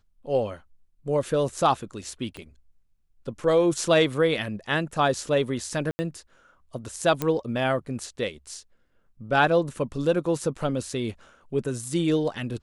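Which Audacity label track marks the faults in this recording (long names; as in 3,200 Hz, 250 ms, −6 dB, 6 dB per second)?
2.370000	2.370000	click −24 dBFS
5.910000	5.990000	drop-out 80 ms
7.220000	7.220000	click −11 dBFS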